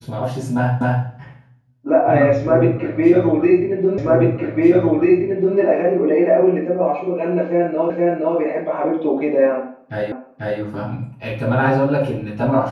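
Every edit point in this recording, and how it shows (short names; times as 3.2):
0.81 repeat of the last 0.25 s
3.98 repeat of the last 1.59 s
7.9 repeat of the last 0.47 s
10.12 repeat of the last 0.49 s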